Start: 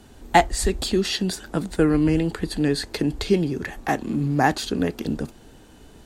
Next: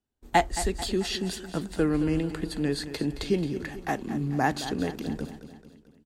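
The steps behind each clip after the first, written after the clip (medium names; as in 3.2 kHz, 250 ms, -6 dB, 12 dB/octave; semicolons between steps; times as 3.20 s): gate -40 dBFS, range -32 dB; on a send: feedback delay 220 ms, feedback 52%, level -12.5 dB; on the sum: trim -6 dB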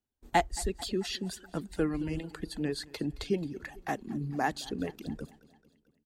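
reverb removal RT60 1.4 s; trim -4 dB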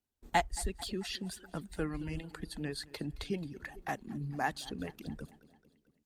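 dynamic bell 360 Hz, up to -7 dB, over -44 dBFS, Q 0.84; trim -1 dB; Opus 48 kbps 48 kHz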